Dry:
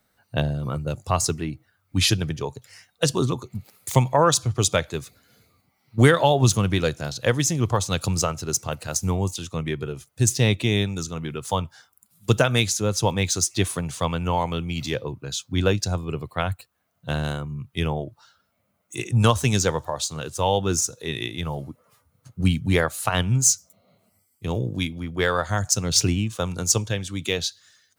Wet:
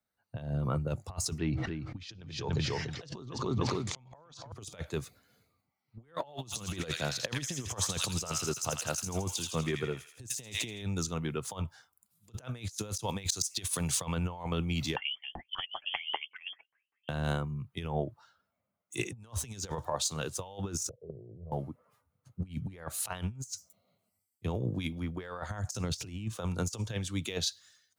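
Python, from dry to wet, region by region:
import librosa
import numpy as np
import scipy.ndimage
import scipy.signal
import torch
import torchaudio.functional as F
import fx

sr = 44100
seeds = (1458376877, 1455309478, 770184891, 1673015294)

y = fx.chain(x, sr, fx.lowpass(hz=5700.0, slope=24),
    fx.echo_feedback(ms=290, feedback_pct=17, wet_db=-11.0),
    fx.sustainer(db_per_s=21.0), at=(1.38, 4.52))
y = fx.chain(y, sr, fx.low_shelf(hz=83.0, db=-7.5),
    fx.echo_wet_highpass(ms=82, feedback_pct=60, hz=2100.0, wet_db=-3), at=(6.21, 10.82))
y = fx.chain(y, sr, fx.high_shelf(hz=2400.0, db=9.0),
    fx.auto_swell(attack_ms=224.0), at=(12.69, 14.0))
y = fx.chain(y, sr, fx.tilt_eq(slope=4.5),
    fx.filter_lfo_lowpass(shape='saw_down', hz=5.1, low_hz=240.0, high_hz=2500.0, q=6.1),
    fx.freq_invert(carrier_hz=3300), at=(14.96, 17.09))
y = fx.chain(y, sr, fx.level_steps(step_db=13),
    fx.steep_lowpass(hz=740.0, slope=48),
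    fx.comb(ms=1.8, depth=0.76), at=(20.89, 21.52))
y = fx.peak_eq(y, sr, hz=880.0, db=2.0, octaves=1.1)
y = fx.over_compress(y, sr, threshold_db=-26.0, ratio=-0.5)
y = fx.band_widen(y, sr, depth_pct=40)
y = y * librosa.db_to_amplitude(-8.5)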